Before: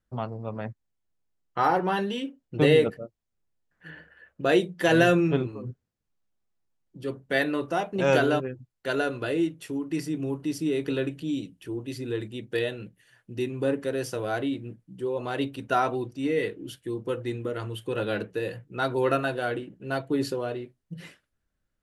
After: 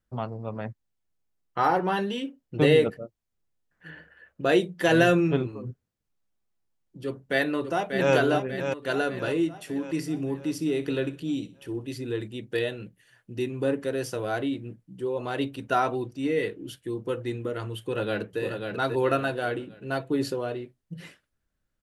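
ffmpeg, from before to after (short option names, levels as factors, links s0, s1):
-filter_complex "[0:a]asplit=2[s0][s1];[s1]afade=t=in:st=7.05:d=0.01,afade=t=out:st=8.14:d=0.01,aecho=0:1:590|1180|1770|2360|2950|3540:0.446684|0.223342|0.111671|0.0558354|0.0279177|0.0139589[s2];[s0][s2]amix=inputs=2:normalize=0,asettb=1/sr,asplit=3[s3][s4][s5];[s3]atrim=end=9.494[s6];[s4]atrim=start=9.49:end=11.85,asetpts=PTS-STARTPTS,afade=t=in:d=0.004:c=qsin,afade=t=out:st=2.356:d=0.004:c=qsin,aecho=1:1:62|124|186:0.141|0.0537|0.0204,atrim=end_sample=104076[s7];[s5]atrim=start=11.846[s8];[s6][s7]acrossfade=d=0.004:c1=hsin:c2=qsin[s9];[s9][s8]acrossfade=d=0.004:c1=qsin:c2=hsin,asplit=2[s10][s11];[s11]afade=t=in:st=17.79:d=0.01,afade=t=out:st=18.41:d=0.01,aecho=0:1:540|1080|1620|2160:0.562341|0.196819|0.0688868|0.0241104[s12];[s10][s12]amix=inputs=2:normalize=0"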